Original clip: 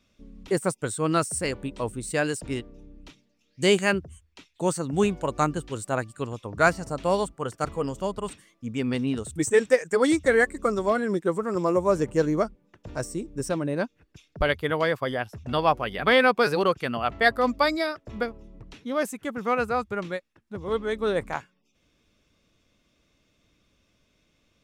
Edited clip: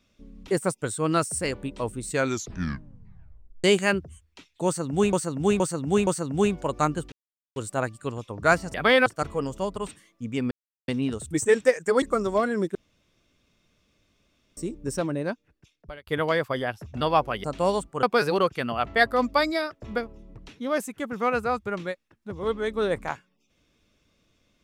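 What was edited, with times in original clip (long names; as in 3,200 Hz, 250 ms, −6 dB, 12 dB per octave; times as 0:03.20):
0:02.06: tape stop 1.58 s
0:04.66–0:05.13: repeat, 4 plays
0:05.71: splice in silence 0.44 s
0:06.89–0:07.48: swap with 0:15.96–0:16.28
0:08.93: splice in silence 0.37 s
0:10.07–0:10.54: remove
0:11.27–0:13.09: fill with room tone
0:13.59–0:14.59: fade out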